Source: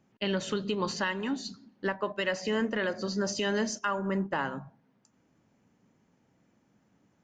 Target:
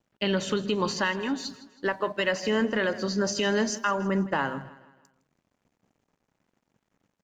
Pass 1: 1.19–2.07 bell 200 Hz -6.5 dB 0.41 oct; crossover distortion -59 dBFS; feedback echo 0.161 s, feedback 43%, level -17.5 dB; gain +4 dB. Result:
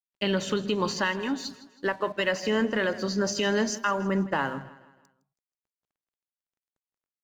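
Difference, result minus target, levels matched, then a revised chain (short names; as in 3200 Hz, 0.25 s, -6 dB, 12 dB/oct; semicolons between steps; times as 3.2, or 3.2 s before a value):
crossover distortion: distortion +6 dB
1.19–2.07 bell 200 Hz -6.5 dB 0.41 oct; crossover distortion -66 dBFS; feedback echo 0.161 s, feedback 43%, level -17.5 dB; gain +4 dB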